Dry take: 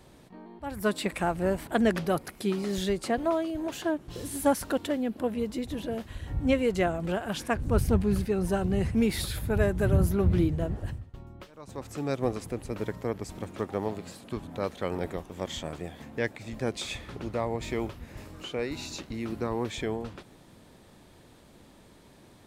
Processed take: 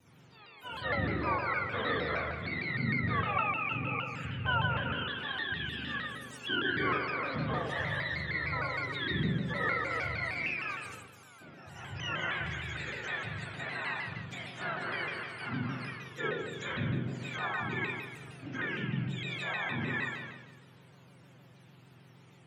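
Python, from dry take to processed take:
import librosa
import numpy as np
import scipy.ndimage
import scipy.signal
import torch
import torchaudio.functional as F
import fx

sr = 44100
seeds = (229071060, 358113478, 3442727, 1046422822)

y = fx.octave_mirror(x, sr, pivot_hz=900.0)
y = fx.env_lowpass_down(y, sr, base_hz=2200.0, full_db=-29.0)
y = fx.rev_spring(y, sr, rt60_s=1.3, pass_ms=(39, 52), chirp_ms=75, drr_db=-6.0)
y = fx.dynamic_eq(y, sr, hz=2300.0, q=0.98, threshold_db=-42.0, ratio=4.0, max_db=4)
y = fx.vibrato_shape(y, sr, shape='saw_down', rate_hz=6.5, depth_cents=160.0)
y = y * 10.0 ** (-8.0 / 20.0)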